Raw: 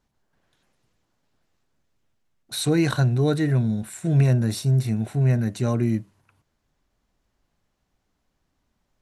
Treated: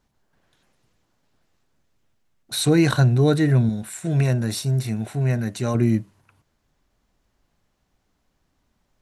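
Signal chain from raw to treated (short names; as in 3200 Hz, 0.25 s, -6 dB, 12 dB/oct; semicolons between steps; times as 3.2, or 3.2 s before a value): 3.69–5.75 low shelf 460 Hz -6 dB; gain +3.5 dB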